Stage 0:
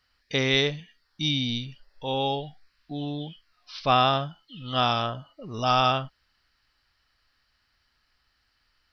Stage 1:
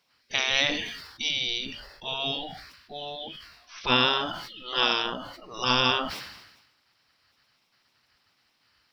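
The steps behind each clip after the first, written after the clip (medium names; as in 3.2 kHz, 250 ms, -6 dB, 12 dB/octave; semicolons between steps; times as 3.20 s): spectral gate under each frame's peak -10 dB weak; decay stretcher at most 54 dB/s; trim +5 dB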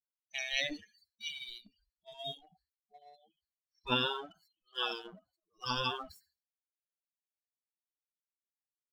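expander on every frequency bin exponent 3; in parallel at -3 dB: crossover distortion -49.5 dBFS; on the sum: trim -9 dB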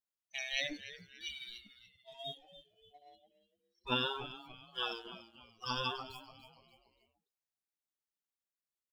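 frequency-shifting echo 289 ms, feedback 40%, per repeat -120 Hz, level -14 dB; trim -2.5 dB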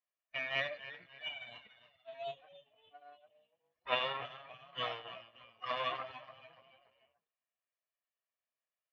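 comb filter that takes the minimum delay 1.7 ms; cabinet simulation 170–2800 Hz, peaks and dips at 190 Hz -7 dB, 390 Hz -9 dB, 670 Hz +5 dB, 990 Hz +3 dB, 1.9 kHz +3 dB, 2.8 kHz +4 dB; trim +2.5 dB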